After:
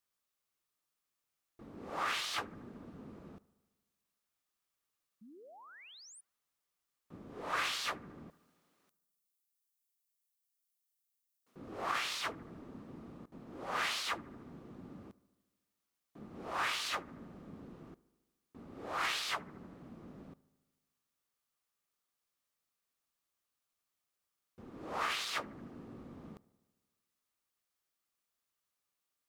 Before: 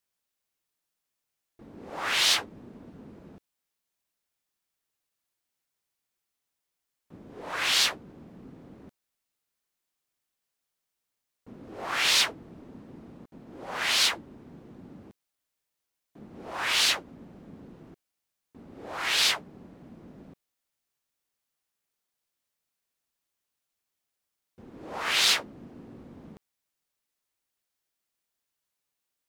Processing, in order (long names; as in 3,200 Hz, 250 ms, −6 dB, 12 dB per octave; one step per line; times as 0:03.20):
parametric band 1,200 Hz +8 dB 0.22 octaves
compressor whose output falls as the input rises −29 dBFS, ratio −1
0:05.21–0:06.21: sound drawn into the spectrogram rise 200–10,000 Hz −48 dBFS
0:08.30–0:11.56: first difference
bucket-brigade delay 75 ms, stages 1,024, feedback 68%, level −21.5 dB
level −7 dB